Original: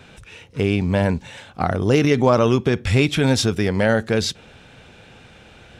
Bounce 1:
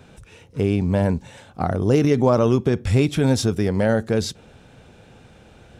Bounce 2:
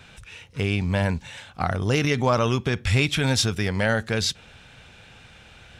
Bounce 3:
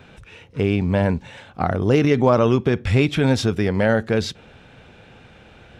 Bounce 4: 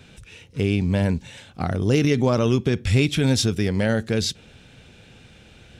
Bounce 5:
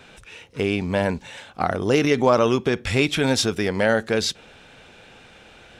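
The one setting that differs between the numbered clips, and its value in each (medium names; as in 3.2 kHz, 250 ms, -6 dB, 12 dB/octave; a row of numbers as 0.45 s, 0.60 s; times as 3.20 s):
peaking EQ, frequency: 2.6 kHz, 350 Hz, 9.6 kHz, 960 Hz, 97 Hz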